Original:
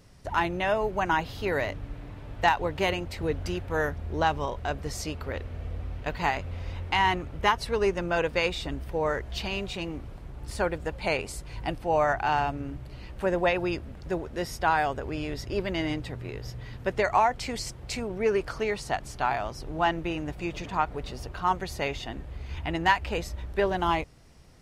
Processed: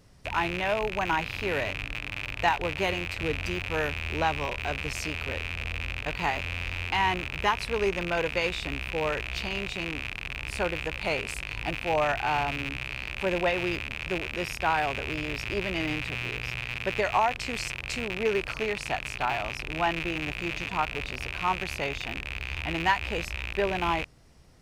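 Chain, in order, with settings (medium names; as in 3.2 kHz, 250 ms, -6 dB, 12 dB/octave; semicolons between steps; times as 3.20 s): rattle on loud lows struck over -44 dBFS, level -18 dBFS; trim -2 dB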